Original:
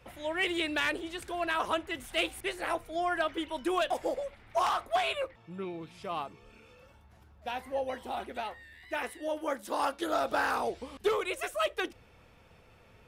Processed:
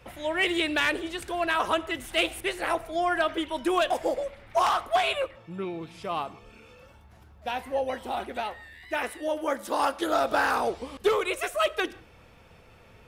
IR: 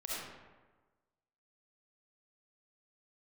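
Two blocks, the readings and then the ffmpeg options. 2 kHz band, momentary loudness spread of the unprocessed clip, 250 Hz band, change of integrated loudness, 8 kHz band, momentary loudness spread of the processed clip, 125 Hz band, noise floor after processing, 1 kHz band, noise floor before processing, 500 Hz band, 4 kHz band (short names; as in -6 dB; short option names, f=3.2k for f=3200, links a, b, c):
+5.0 dB, 10 LU, +5.0 dB, +5.0 dB, +5.0 dB, 10 LU, +5.0 dB, -54 dBFS, +5.0 dB, -59 dBFS, +5.0 dB, +5.0 dB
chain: -filter_complex "[0:a]asplit=2[a][b];[1:a]atrim=start_sample=2205,afade=t=out:st=0.24:d=0.01,atrim=end_sample=11025[c];[b][c]afir=irnorm=-1:irlink=0,volume=-20dB[d];[a][d]amix=inputs=2:normalize=0,volume=4.5dB"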